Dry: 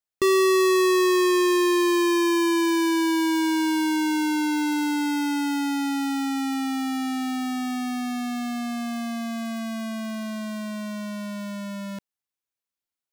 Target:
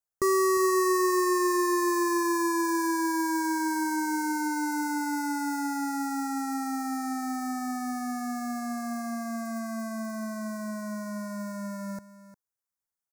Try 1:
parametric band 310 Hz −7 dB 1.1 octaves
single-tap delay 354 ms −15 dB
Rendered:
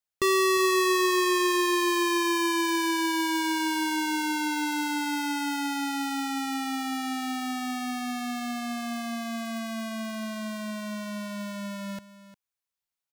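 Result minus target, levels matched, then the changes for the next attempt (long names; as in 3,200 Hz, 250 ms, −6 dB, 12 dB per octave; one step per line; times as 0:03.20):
4,000 Hz band +10.0 dB
add first: Butterworth band-reject 3,100 Hz, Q 0.84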